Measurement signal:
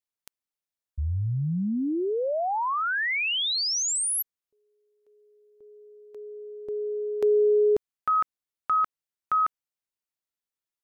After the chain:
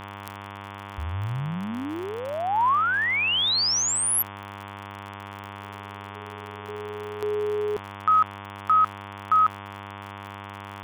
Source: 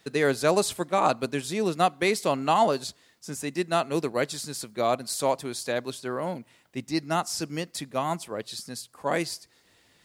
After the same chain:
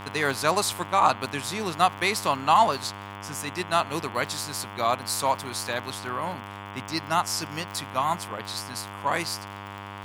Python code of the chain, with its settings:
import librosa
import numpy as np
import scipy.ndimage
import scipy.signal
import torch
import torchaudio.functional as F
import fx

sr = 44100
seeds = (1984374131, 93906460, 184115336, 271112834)

y = fx.high_shelf(x, sr, hz=2100.0, db=12.0)
y = fx.dmg_buzz(y, sr, base_hz=100.0, harmonics=35, level_db=-37.0, tilt_db=-3, odd_only=False)
y = fx.graphic_eq_10(y, sr, hz=(125, 500, 1000, 8000), db=(3, -4, 10, -5))
y = fx.dmg_crackle(y, sr, seeds[0], per_s=53.0, level_db=-29.0)
y = F.gain(torch.from_numpy(y), -5.0).numpy()